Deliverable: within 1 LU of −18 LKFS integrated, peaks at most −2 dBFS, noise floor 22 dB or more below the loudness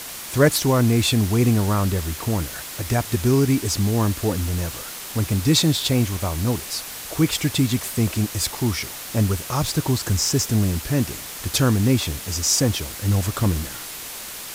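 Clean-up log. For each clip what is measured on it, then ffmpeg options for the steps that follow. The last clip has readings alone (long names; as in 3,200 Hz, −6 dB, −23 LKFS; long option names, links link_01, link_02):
background noise floor −35 dBFS; target noise floor −44 dBFS; integrated loudness −21.5 LKFS; sample peak −4.5 dBFS; target loudness −18.0 LKFS
→ -af "afftdn=noise_reduction=9:noise_floor=-35"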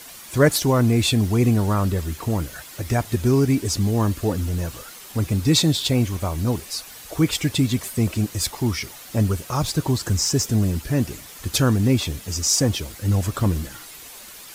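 background noise floor −41 dBFS; target noise floor −44 dBFS
→ -af "afftdn=noise_reduction=6:noise_floor=-41"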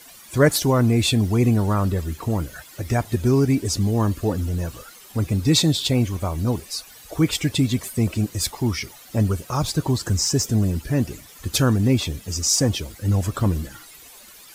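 background noise floor −46 dBFS; integrated loudness −22.0 LKFS; sample peak −5.0 dBFS; target loudness −18.0 LKFS
→ -af "volume=4dB,alimiter=limit=-2dB:level=0:latency=1"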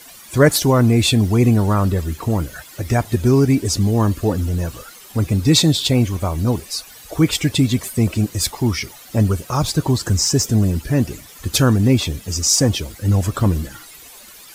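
integrated loudness −18.0 LKFS; sample peak −2.0 dBFS; background noise floor −42 dBFS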